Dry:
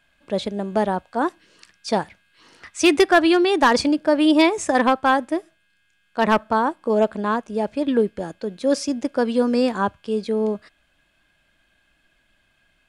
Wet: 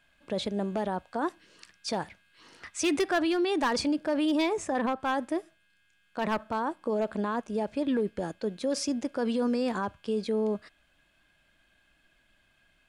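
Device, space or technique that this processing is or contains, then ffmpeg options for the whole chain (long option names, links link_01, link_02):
clipper into limiter: -filter_complex "[0:a]asplit=3[link_01][link_02][link_03];[link_01]afade=type=out:start_time=4.52:duration=0.02[link_04];[link_02]highshelf=frequency=2600:gain=-8.5,afade=type=in:start_time=4.52:duration=0.02,afade=type=out:start_time=4.99:duration=0.02[link_05];[link_03]afade=type=in:start_time=4.99:duration=0.02[link_06];[link_04][link_05][link_06]amix=inputs=3:normalize=0,asoftclip=type=hard:threshold=-10dB,alimiter=limit=-18dB:level=0:latency=1:release=35,volume=-3dB"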